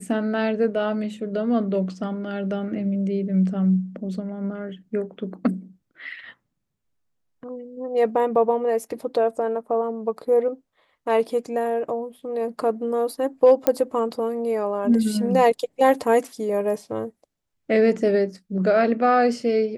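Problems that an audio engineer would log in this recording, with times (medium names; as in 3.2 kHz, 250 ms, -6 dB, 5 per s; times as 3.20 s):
13.67 s: pop -6 dBFS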